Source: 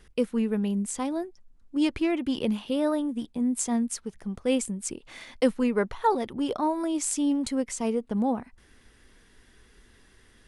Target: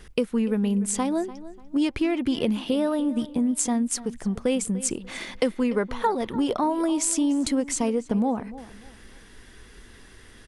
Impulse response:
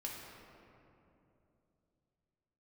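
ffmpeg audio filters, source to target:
-filter_complex "[0:a]acompressor=threshold=0.0316:ratio=4,asplit=2[s0][s1];[s1]adelay=294,lowpass=f=3800:p=1,volume=0.158,asplit=2[s2][s3];[s3]adelay=294,lowpass=f=3800:p=1,volume=0.3,asplit=2[s4][s5];[s5]adelay=294,lowpass=f=3800:p=1,volume=0.3[s6];[s0][s2][s4][s6]amix=inputs=4:normalize=0,volume=2.66"

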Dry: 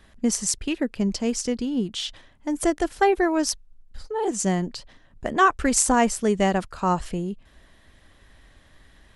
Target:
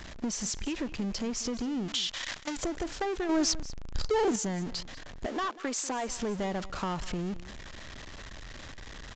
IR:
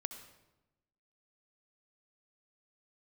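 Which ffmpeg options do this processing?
-filter_complex "[0:a]aeval=exprs='val(0)+0.5*0.0335*sgn(val(0))':c=same,asettb=1/sr,asplit=3[s0][s1][s2];[s0]atrim=end=5.264[s3];[s1]atrim=start=5.26:end=6.09,asetpts=PTS-STARTPTS,afade=t=in:d=0.004:c=qsin,afade=t=out:st=0.826:d=0.004:c=qsin,highpass=f=280:w=0.5412,highpass=f=280:w=1.3066[s4];[s2]atrim=start=6.086[s5];[s3][s4]acrossfade=d=0.004:c1=hsin:c2=qsin[s6];[s6][s5]acrossfade=d=0.004:c1=qsin:c2=hsin,asoftclip=type=tanh:threshold=0.119,asettb=1/sr,asplit=3[s7][s8][s9];[s7]atrim=end=1.884[s10];[s8]atrim=start=1.88:end=2.57,asetpts=PTS-STARTPTS,afade=t=in:d=0.004:c=qsin,afade=t=out:st=0.686:d=0.004:c=qsin,tiltshelf=f=750:g=-9[s11];[s9]atrim=start=2.566[s12];[s10][s11]acrossfade=d=0.004:c1=hsin:c2=qsin[s13];[s13][s12]acrossfade=d=0.004:c1=qsin:c2=hsin,agate=range=0.355:threshold=0.0251:ratio=16:detection=peak,aresample=16000,aresample=44100,acompressor=threshold=0.0251:ratio=4,aecho=1:1:191:0.126,asettb=1/sr,asplit=3[s14][s15][s16];[s14]atrim=end=3.294[s17];[s15]atrim=start=3.29:end=4.36,asetpts=PTS-STARTPTS,afade=t=in:d=0.004:c=qsin,afade=t=out:st=1.066:d=0.004:c=qsin,acontrast=63[s18];[s16]atrim=start=4.356[s19];[s17][s18]acrossfade=d=0.004:c1=hsin:c2=qsin[s20];[s20][s19]acrossfade=d=0.004:c1=qsin:c2=hsin"

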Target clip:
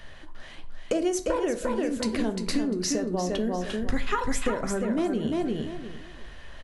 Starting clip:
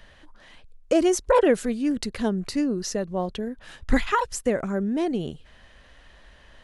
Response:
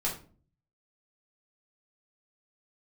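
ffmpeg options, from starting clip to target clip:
-filter_complex "[0:a]asplit=2[s0][s1];[s1]aecho=0:1:349|698|1047:0.531|0.122|0.0281[s2];[s0][s2]amix=inputs=2:normalize=0,acompressor=threshold=0.0447:ratio=12,asplit=2[s3][s4];[1:a]atrim=start_sample=2205,asetrate=40572,aresample=44100[s5];[s4][s5]afir=irnorm=-1:irlink=0,volume=0.299[s6];[s3][s6]amix=inputs=2:normalize=0,volume=1.19"

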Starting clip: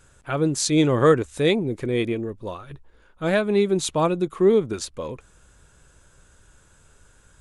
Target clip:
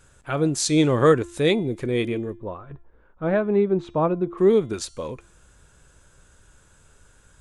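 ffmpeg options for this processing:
-filter_complex "[0:a]asplit=3[s0][s1][s2];[s0]afade=t=out:st=2.35:d=0.02[s3];[s1]lowpass=1400,afade=t=in:st=2.35:d=0.02,afade=t=out:st=4.37:d=0.02[s4];[s2]afade=t=in:st=4.37:d=0.02[s5];[s3][s4][s5]amix=inputs=3:normalize=0,bandreject=f=344.6:t=h:w=4,bandreject=f=689.2:t=h:w=4,bandreject=f=1033.8:t=h:w=4,bandreject=f=1378.4:t=h:w=4,bandreject=f=1723:t=h:w=4,bandreject=f=2067.6:t=h:w=4,bandreject=f=2412.2:t=h:w=4,bandreject=f=2756.8:t=h:w=4,bandreject=f=3101.4:t=h:w=4,bandreject=f=3446:t=h:w=4,bandreject=f=3790.6:t=h:w=4,bandreject=f=4135.2:t=h:w=4,bandreject=f=4479.8:t=h:w=4,bandreject=f=4824.4:t=h:w=4,bandreject=f=5169:t=h:w=4,bandreject=f=5513.6:t=h:w=4,bandreject=f=5858.2:t=h:w=4,bandreject=f=6202.8:t=h:w=4,bandreject=f=6547.4:t=h:w=4,bandreject=f=6892:t=h:w=4,bandreject=f=7236.6:t=h:w=4,bandreject=f=7581.2:t=h:w=4,bandreject=f=7925.8:t=h:w=4,bandreject=f=8270.4:t=h:w=4,bandreject=f=8615:t=h:w=4,bandreject=f=8959.6:t=h:w=4,bandreject=f=9304.2:t=h:w=4,bandreject=f=9648.8:t=h:w=4,bandreject=f=9993.4:t=h:w=4,bandreject=f=10338:t=h:w=4"

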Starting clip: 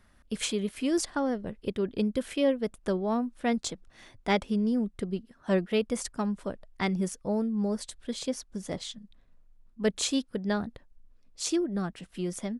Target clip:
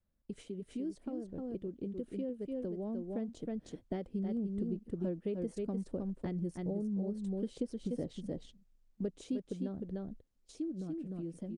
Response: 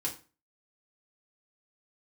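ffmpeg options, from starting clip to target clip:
-af "aecho=1:1:332:0.501,asetrate=48000,aresample=44100,agate=range=0.178:threshold=0.00562:ratio=16:detection=peak,acompressor=threshold=0.0158:ratio=8,firequalizer=gain_entry='entry(590,0);entry(1100,-13);entry(1700,-14)':delay=0.05:min_phase=1,asetrate=38170,aresample=44100,atempo=1.15535,dynaudnorm=f=540:g=11:m=1.78,adynamicequalizer=threshold=0.00251:dfrequency=290:dqfactor=2.8:tfrequency=290:tqfactor=2.8:attack=5:release=100:ratio=0.375:range=2.5:mode=boostabove:tftype=bell,volume=0.708" -ar 48000 -c:a libopus -b:a 48k

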